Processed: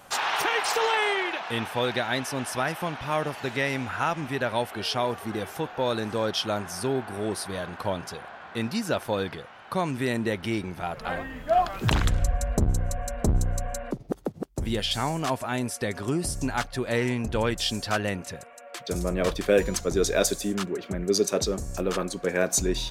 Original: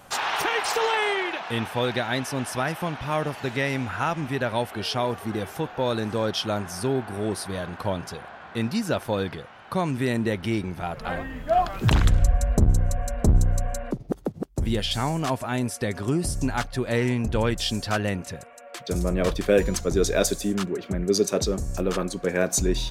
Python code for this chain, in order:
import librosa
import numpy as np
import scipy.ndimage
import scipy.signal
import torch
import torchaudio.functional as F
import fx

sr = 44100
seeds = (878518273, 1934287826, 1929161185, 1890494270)

y = fx.low_shelf(x, sr, hz=260.0, db=-5.5)